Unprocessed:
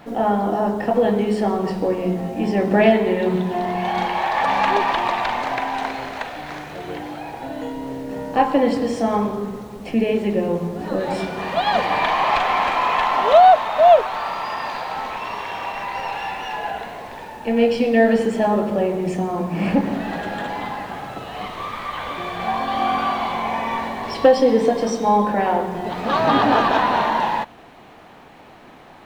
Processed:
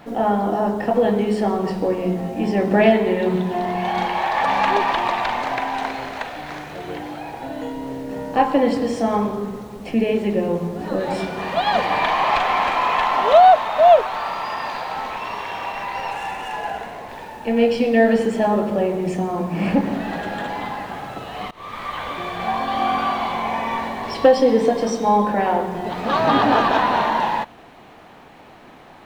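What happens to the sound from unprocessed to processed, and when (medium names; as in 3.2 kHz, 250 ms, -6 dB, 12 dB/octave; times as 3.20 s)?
16.11–17.09 s: median filter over 9 samples
21.51–21.95 s: fade in equal-power, from -23 dB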